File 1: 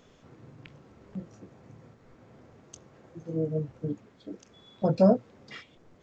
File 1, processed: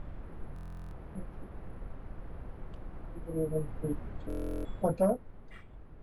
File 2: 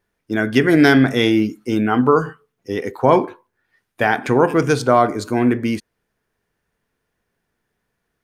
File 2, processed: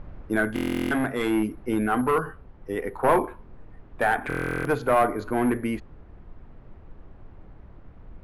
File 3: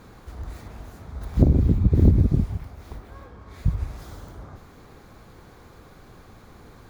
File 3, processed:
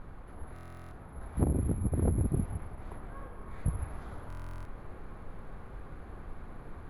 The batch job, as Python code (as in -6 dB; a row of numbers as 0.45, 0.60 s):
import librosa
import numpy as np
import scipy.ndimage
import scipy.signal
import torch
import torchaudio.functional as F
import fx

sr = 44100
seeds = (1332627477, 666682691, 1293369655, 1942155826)

y = (np.kron(scipy.signal.resample_poly(x, 1, 4), np.eye(4)[0]) * 4)[:len(x)]
y = scipy.signal.sosfilt(scipy.signal.butter(2, 45.0, 'highpass', fs=sr, output='sos'), y)
y = fx.low_shelf(y, sr, hz=480.0, db=-9.0)
y = np.clip(10.0 ** (0.0 / 20.0) * y, -1.0, 1.0) / 10.0 ** (0.0 / 20.0)
y = fx.dmg_noise_colour(y, sr, seeds[0], colour='brown', level_db=-43.0)
y = fx.rider(y, sr, range_db=5, speed_s=0.5)
y = scipy.signal.sosfilt(scipy.signal.butter(2, 1700.0, 'lowpass', fs=sr, output='sos'), y)
y = fx.buffer_glitch(y, sr, at_s=(0.54, 4.28), block=1024, repeats=15)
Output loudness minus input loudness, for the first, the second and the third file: -9.0, -8.5, -13.0 LU